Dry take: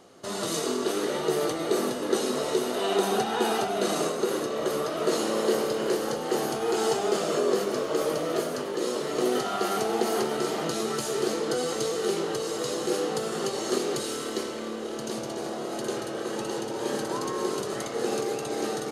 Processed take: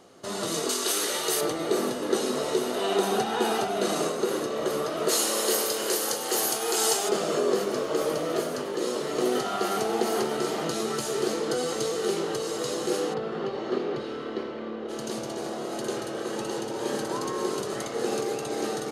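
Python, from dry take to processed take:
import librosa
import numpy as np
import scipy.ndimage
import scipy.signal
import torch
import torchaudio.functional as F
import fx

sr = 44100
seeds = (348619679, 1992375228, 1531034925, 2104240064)

y = fx.tilt_eq(x, sr, slope=4.0, at=(0.69, 1.41))
y = fx.riaa(y, sr, side='recording', at=(5.08, 7.08), fade=0.02)
y = fx.air_absorb(y, sr, metres=330.0, at=(13.13, 14.88), fade=0.02)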